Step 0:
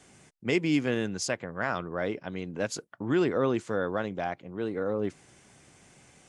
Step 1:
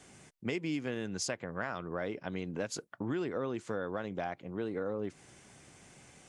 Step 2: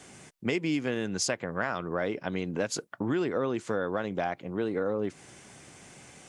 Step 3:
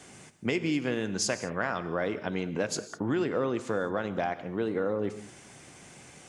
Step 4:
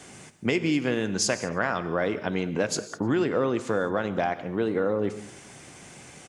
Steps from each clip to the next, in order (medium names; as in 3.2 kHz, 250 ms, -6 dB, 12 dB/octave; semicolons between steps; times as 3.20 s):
compression, threshold -32 dBFS, peak gain reduction 11 dB
bass shelf 82 Hz -6.5 dB; trim +6.5 dB
gated-style reverb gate 230 ms flat, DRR 11.5 dB
echo from a far wall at 53 m, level -30 dB; trim +4 dB